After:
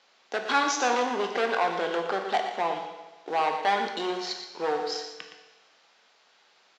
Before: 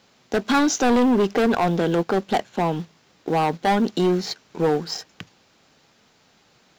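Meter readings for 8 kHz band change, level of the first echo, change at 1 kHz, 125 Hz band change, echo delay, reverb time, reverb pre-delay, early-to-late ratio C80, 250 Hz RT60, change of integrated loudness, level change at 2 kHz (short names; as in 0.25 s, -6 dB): -5.0 dB, -10.0 dB, -2.0 dB, -23.5 dB, 0.117 s, 1.2 s, 15 ms, 6.5 dB, 1.2 s, -6.0 dB, -1.0 dB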